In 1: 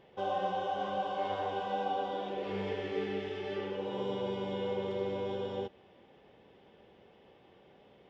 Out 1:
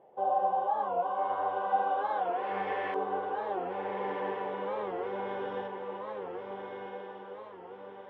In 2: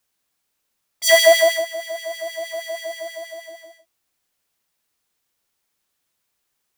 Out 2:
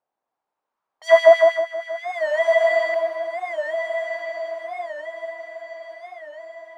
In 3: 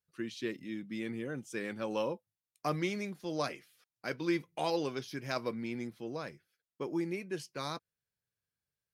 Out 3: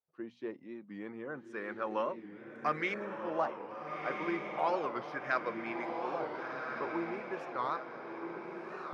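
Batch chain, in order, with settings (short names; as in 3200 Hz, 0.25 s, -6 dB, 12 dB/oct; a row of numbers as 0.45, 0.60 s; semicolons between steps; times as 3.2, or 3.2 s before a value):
notches 60/120/180/240 Hz; LFO low-pass saw up 0.34 Hz 750–1800 Hz; RIAA curve recording; diffused feedback echo 1.416 s, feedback 45%, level -4 dB; record warp 45 rpm, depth 160 cents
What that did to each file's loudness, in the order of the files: +2.5, -2.0, 0.0 LU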